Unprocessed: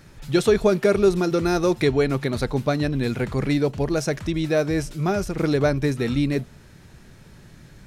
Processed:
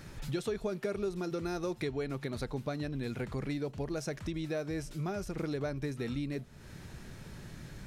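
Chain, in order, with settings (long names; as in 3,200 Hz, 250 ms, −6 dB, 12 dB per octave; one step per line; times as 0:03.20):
downward compressor 3 to 1, threshold −38 dBFS, peak gain reduction 18.5 dB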